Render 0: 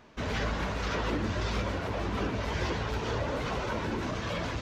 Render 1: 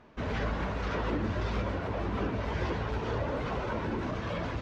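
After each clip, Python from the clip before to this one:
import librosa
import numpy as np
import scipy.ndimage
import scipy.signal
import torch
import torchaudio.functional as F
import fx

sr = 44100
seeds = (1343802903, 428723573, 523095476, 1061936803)

y = fx.lowpass(x, sr, hz=1900.0, slope=6)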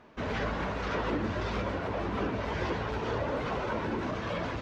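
y = fx.low_shelf(x, sr, hz=130.0, db=-7.5)
y = y * 10.0 ** (2.0 / 20.0)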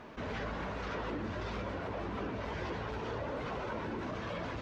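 y = fx.env_flatten(x, sr, amount_pct=50)
y = y * 10.0 ** (-8.0 / 20.0)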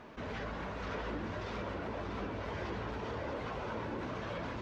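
y = x + 10.0 ** (-6.0 / 20.0) * np.pad(x, (int(636 * sr / 1000.0), 0))[:len(x)]
y = y * 10.0 ** (-2.0 / 20.0)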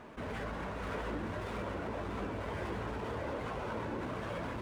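y = scipy.signal.medfilt(x, 9)
y = y * 10.0 ** (1.0 / 20.0)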